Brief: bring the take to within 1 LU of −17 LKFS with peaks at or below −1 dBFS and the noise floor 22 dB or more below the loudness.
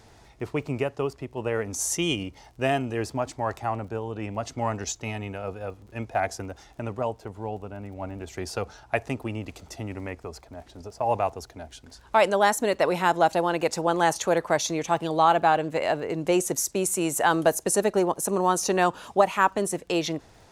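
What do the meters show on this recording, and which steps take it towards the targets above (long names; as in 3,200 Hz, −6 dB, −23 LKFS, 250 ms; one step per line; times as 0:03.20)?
crackle rate 29 per second; integrated loudness −26.0 LKFS; sample peak −5.0 dBFS; target loudness −17.0 LKFS
→ click removal
level +9 dB
brickwall limiter −1 dBFS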